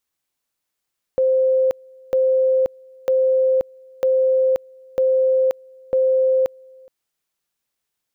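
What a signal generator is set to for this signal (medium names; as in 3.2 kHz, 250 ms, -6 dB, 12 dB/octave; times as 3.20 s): two-level tone 522 Hz -13.5 dBFS, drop 28.5 dB, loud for 0.53 s, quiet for 0.42 s, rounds 6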